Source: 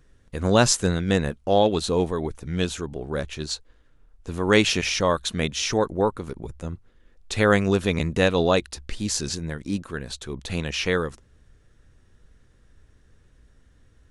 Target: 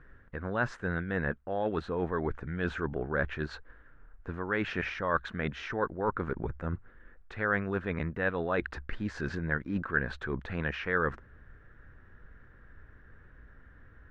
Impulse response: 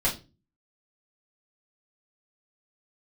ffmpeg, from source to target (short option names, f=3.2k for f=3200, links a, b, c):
-af "areverse,acompressor=threshold=-30dB:ratio=12,areverse,lowpass=f=1.6k:t=q:w=3.5,volume=1.5dB"